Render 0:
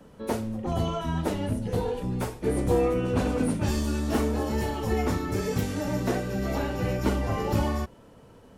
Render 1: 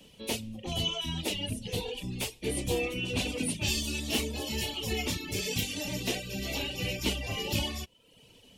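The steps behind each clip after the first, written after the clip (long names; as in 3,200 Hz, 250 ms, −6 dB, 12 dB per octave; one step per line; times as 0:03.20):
high shelf with overshoot 2,000 Hz +12 dB, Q 3
reverb reduction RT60 0.7 s
level −6 dB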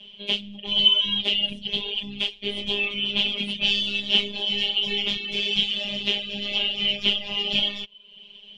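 phases set to zero 203 Hz
low-pass with resonance 3,200 Hz, resonance Q 8.5
level +2 dB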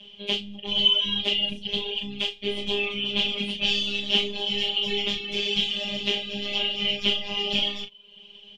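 ambience of single reflections 10 ms −9 dB, 37 ms −9.5 dB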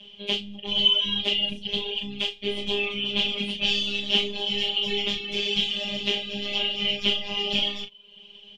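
no processing that can be heard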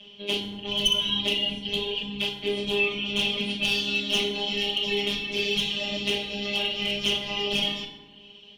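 asymmetric clip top −15.5 dBFS
feedback delay network reverb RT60 1.4 s, low-frequency decay 1.25×, high-frequency decay 0.45×, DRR 1.5 dB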